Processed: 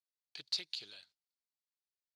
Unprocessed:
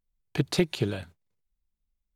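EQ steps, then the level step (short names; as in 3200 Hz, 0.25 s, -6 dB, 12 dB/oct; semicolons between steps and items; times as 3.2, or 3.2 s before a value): band-pass 4500 Hz, Q 4.2; +1.0 dB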